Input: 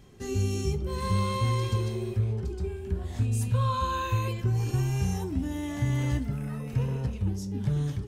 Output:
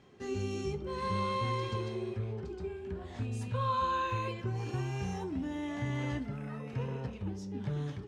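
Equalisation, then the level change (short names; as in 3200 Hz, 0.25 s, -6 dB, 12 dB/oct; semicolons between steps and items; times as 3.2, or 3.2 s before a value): HPF 340 Hz 6 dB/oct; air absorption 56 m; high shelf 5700 Hz -11.5 dB; 0.0 dB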